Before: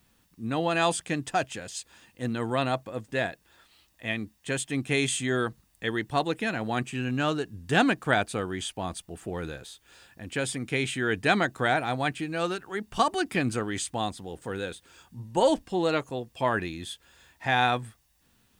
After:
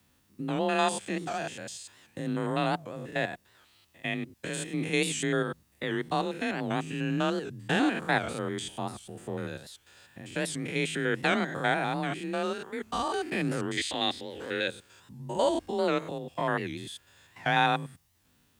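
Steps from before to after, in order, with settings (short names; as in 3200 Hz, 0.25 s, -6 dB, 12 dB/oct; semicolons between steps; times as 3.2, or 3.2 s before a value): stepped spectrum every 0.1 s; 13.77–14.68 graphic EQ 125/250/500/1000/2000/4000/8000 Hz -11/+4/+3/-5/+12/+10/-4 dB; frequency shift +27 Hz; record warp 78 rpm, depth 160 cents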